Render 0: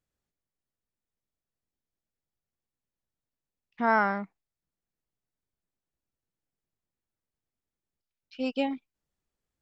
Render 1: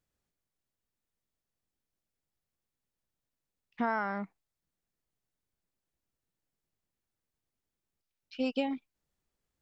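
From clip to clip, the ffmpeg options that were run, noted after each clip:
ffmpeg -i in.wav -af "acompressor=threshold=-28dB:ratio=12,volume=1.5dB" out.wav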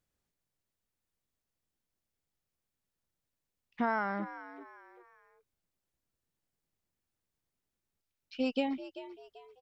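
ffmpeg -i in.wav -filter_complex "[0:a]asplit=4[link_01][link_02][link_03][link_04];[link_02]adelay=389,afreqshift=82,volume=-14dB[link_05];[link_03]adelay=778,afreqshift=164,volume=-22.9dB[link_06];[link_04]adelay=1167,afreqshift=246,volume=-31.7dB[link_07];[link_01][link_05][link_06][link_07]amix=inputs=4:normalize=0" out.wav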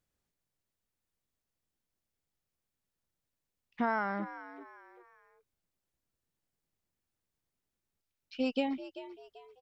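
ffmpeg -i in.wav -af anull out.wav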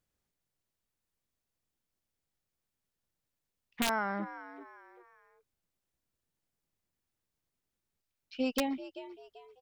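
ffmpeg -i in.wav -af "aeval=exprs='(mod(10*val(0)+1,2)-1)/10':channel_layout=same" out.wav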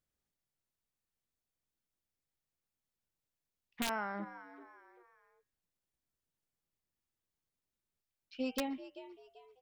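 ffmpeg -i in.wav -af "bandreject=frequency=97.51:width_type=h:width=4,bandreject=frequency=195.02:width_type=h:width=4,bandreject=frequency=292.53:width_type=h:width=4,bandreject=frequency=390.04:width_type=h:width=4,bandreject=frequency=487.55:width_type=h:width=4,bandreject=frequency=585.06:width_type=h:width=4,bandreject=frequency=682.57:width_type=h:width=4,bandreject=frequency=780.08:width_type=h:width=4,bandreject=frequency=877.59:width_type=h:width=4,bandreject=frequency=975.1:width_type=h:width=4,bandreject=frequency=1072.61:width_type=h:width=4,bandreject=frequency=1170.12:width_type=h:width=4,bandreject=frequency=1267.63:width_type=h:width=4,bandreject=frequency=1365.14:width_type=h:width=4,bandreject=frequency=1462.65:width_type=h:width=4,bandreject=frequency=1560.16:width_type=h:width=4,bandreject=frequency=1657.67:width_type=h:width=4,bandreject=frequency=1755.18:width_type=h:width=4,bandreject=frequency=1852.69:width_type=h:width=4,bandreject=frequency=1950.2:width_type=h:width=4,bandreject=frequency=2047.71:width_type=h:width=4,bandreject=frequency=2145.22:width_type=h:width=4,bandreject=frequency=2242.73:width_type=h:width=4,bandreject=frequency=2340.24:width_type=h:width=4,bandreject=frequency=2437.75:width_type=h:width=4,bandreject=frequency=2535.26:width_type=h:width=4,bandreject=frequency=2632.77:width_type=h:width=4,bandreject=frequency=2730.28:width_type=h:width=4,bandreject=frequency=2827.79:width_type=h:width=4,bandreject=frequency=2925.3:width_type=h:width=4,bandreject=frequency=3022.81:width_type=h:width=4,bandreject=frequency=3120.32:width_type=h:width=4,volume=-5dB" out.wav

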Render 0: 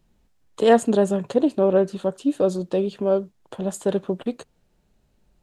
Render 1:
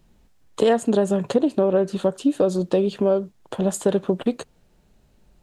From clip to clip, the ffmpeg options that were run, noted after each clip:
ffmpeg -i in.wav -af "acompressor=threshold=-21dB:ratio=6,volume=6dB" out.wav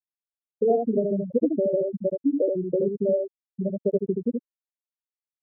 ffmpeg -i in.wav -af "afftfilt=real='re*gte(hypot(re,im),0.631)':imag='im*gte(hypot(re,im),0.631)':win_size=1024:overlap=0.75,aecho=1:1:76:0.631,volume=-3.5dB" out.wav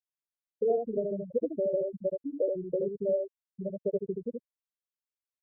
ffmpeg -i in.wav -af "aecho=1:1:1.9:0.52,volume=-8dB" out.wav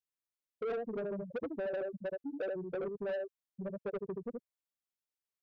ffmpeg -i in.wav -af "asoftclip=type=tanh:threshold=-30.5dB,volume=-2.5dB" out.wav

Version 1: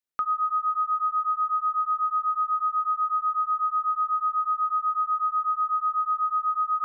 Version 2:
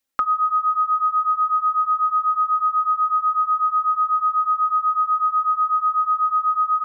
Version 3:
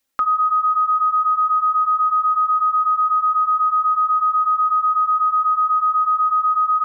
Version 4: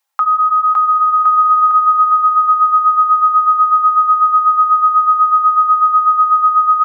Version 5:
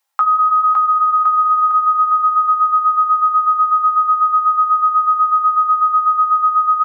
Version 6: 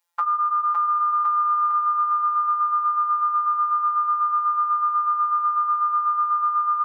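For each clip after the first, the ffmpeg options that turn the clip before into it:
ffmpeg -i in.wav -af "aecho=1:1:3.7:0.8,areverse,acompressor=mode=upward:threshold=-31dB:ratio=2.5,areverse,volume=8dB" out.wav
ffmpeg -i in.wav -af "alimiter=limit=-18.5dB:level=0:latency=1:release=37,volume=5.5dB" out.wav
ffmpeg -i in.wav -af "highpass=frequency=850:width_type=q:width=3.7,aecho=1:1:560|1064|1518|1926|2293:0.631|0.398|0.251|0.158|0.1" out.wav
ffmpeg -i in.wav -filter_complex "[0:a]acompressor=threshold=-12dB:ratio=6,asplit=2[link_01][link_02];[link_02]adelay=15,volume=-8dB[link_03];[link_01][link_03]amix=inputs=2:normalize=0" out.wav
ffmpeg -i in.wav -af "afftfilt=real='hypot(re,im)*cos(PI*b)':imag='0':win_size=1024:overlap=0.75,volume=-1dB" out.wav

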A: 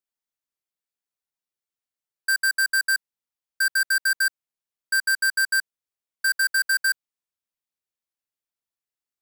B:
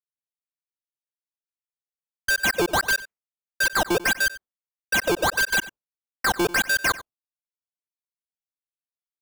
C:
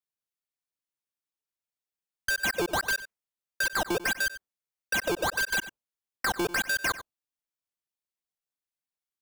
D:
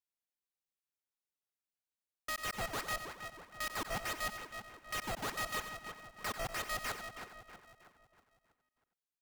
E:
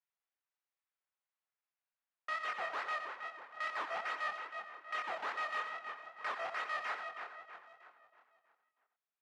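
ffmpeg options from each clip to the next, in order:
ffmpeg -i in.wav -filter_complex "[0:a]acrusher=samples=13:mix=1:aa=0.000001:lfo=1:lforange=20.8:lforate=1.6,agate=range=-33dB:threshold=-39dB:ratio=3:detection=peak,asplit=2[link_01][link_02];[link_02]adelay=93.29,volume=-17dB,highshelf=frequency=4000:gain=-2.1[link_03];[link_01][link_03]amix=inputs=2:normalize=0" out.wav
ffmpeg -i in.wav -af "acompressor=threshold=-29dB:ratio=3" out.wav
ffmpeg -i in.wav -filter_complex "[0:a]alimiter=level_in=7dB:limit=-24dB:level=0:latency=1:release=15,volume=-7dB,asplit=2[link_01][link_02];[link_02]adelay=320,lowpass=frequency=2200:poles=1,volume=-6.5dB,asplit=2[link_03][link_04];[link_04]adelay=320,lowpass=frequency=2200:poles=1,volume=0.51,asplit=2[link_05][link_06];[link_06]adelay=320,lowpass=frequency=2200:poles=1,volume=0.51,asplit=2[link_07][link_08];[link_08]adelay=320,lowpass=frequency=2200:poles=1,volume=0.51,asplit=2[link_09][link_10];[link_10]adelay=320,lowpass=frequency=2200:poles=1,volume=0.51,asplit=2[link_11][link_12];[link_12]adelay=320,lowpass=frequency=2200:poles=1,volume=0.51[link_13];[link_03][link_05][link_07][link_09][link_11][link_13]amix=inputs=6:normalize=0[link_14];[link_01][link_14]amix=inputs=2:normalize=0,aeval=exprs='val(0)*sgn(sin(2*PI*320*n/s))':channel_layout=same,volume=-5.5dB" out.wav
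ffmpeg -i in.wav -af "flanger=delay=22.5:depth=5.9:speed=2.4,asoftclip=type=tanh:threshold=-36dB,highpass=770,lowpass=2100,volume=8.5dB" out.wav

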